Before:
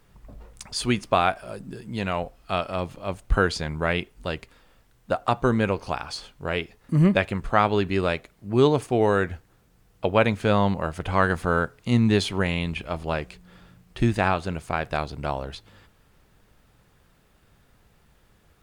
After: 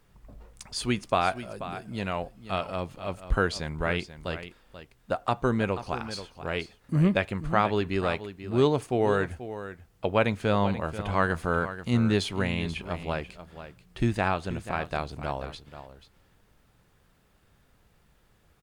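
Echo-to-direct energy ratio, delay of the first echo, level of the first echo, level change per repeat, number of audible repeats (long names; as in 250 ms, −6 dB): −12.5 dB, 485 ms, −12.5 dB, repeats not evenly spaced, 1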